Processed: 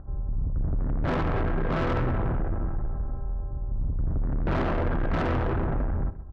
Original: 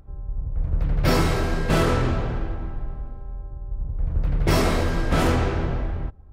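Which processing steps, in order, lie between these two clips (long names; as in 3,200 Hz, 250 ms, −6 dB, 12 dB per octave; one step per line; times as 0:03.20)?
adaptive Wiener filter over 9 samples
Butterworth low-pass 1,700 Hz
notch filter 440 Hz, Q 12
in parallel at +3 dB: brickwall limiter −18 dBFS, peak gain reduction 9 dB
on the sum: soft clipping −21 dBFS, distortion −8 dB
on a send: single-tap delay 130 ms −15 dB
on the sum: level −2 dB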